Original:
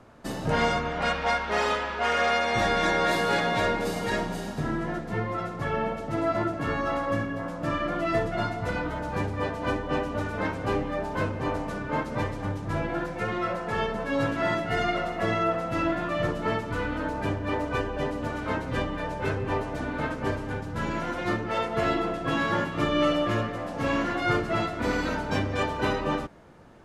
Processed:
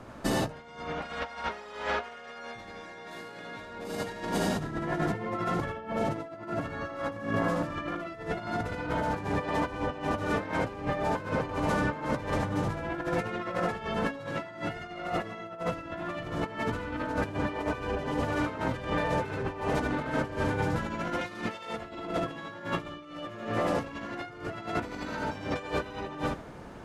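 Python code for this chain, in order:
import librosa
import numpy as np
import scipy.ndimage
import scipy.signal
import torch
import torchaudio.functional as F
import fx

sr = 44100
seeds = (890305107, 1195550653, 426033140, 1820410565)

y = fx.high_shelf(x, sr, hz=2000.0, db=10.0, at=(21.21, 21.7))
y = fx.echo_feedback(y, sr, ms=77, feedback_pct=15, wet_db=-4.0)
y = fx.over_compress(y, sr, threshold_db=-32.0, ratio=-0.5)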